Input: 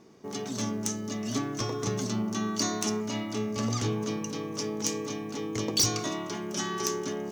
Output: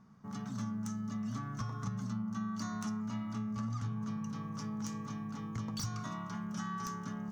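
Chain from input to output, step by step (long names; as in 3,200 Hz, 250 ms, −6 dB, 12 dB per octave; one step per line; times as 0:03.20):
drawn EQ curve 210 Hz 0 dB, 350 Hz −25 dB, 1,300 Hz −1 dB, 2,400 Hz −16 dB
downward compressor 4 to 1, threshold −36 dBFS, peak gain reduction 8 dB
level +1 dB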